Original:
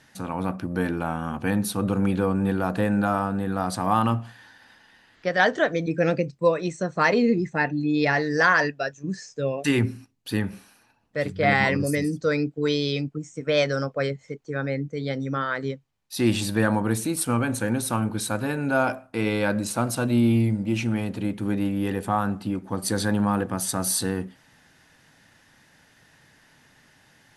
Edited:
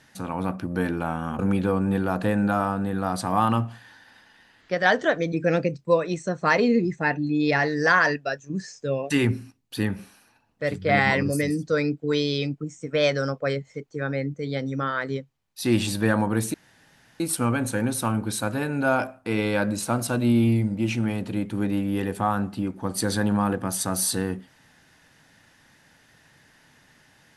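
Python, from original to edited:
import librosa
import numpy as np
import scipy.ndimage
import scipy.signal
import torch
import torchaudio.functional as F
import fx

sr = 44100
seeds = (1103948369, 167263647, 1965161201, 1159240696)

y = fx.edit(x, sr, fx.cut(start_s=1.39, length_s=0.54),
    fx.insert_room_tone(at_s=17.08, length_s=0.66), tone=tone)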